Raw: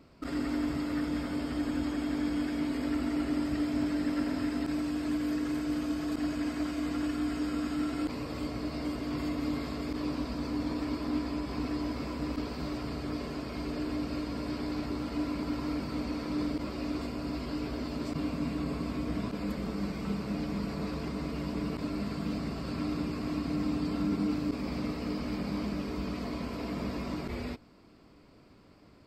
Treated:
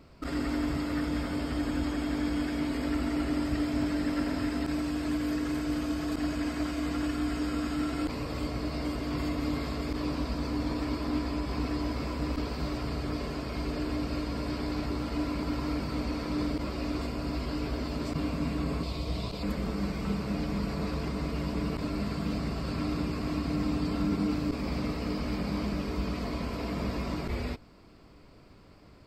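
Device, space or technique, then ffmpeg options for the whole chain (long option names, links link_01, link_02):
low shelf boost with a cut just above: -filter_complex "[0:a]lowshelf=frequency=64:gain=8,equalizer=frequency=260:width_type=o:width=0.84:gain=-3.5,asettb=1/sr,asplit=3[link_01][link_02][link_03];[link_01]atrim=end=18.834[link_04];[link_02]atrim=start=18.83:end=19.43,asetpts=PTS-STARTPTS,afade=type=in:duration=0.004:curve=qsin,afade=type=out:start_time=0.596:duration=0.004:curve=qsin,equalizer=frequency=250:width_type=o:width=0.67:gain=-10,equalizer=frequency=1600:width_type=o:width=0.67:gain=-10,equalizer=frequency=4000:width_type=o:width=0.67:gain=9[link_05];[link_03]atrim=start=19.426[link_06];[link_04][link_05]acrossfade=duration=0.004:curve1=hsin:curve2=qsin[link_07];[link_07][link_06]acrossfade=duration=0.004:curve1=qsin:curve2=hsin,volume=3dB"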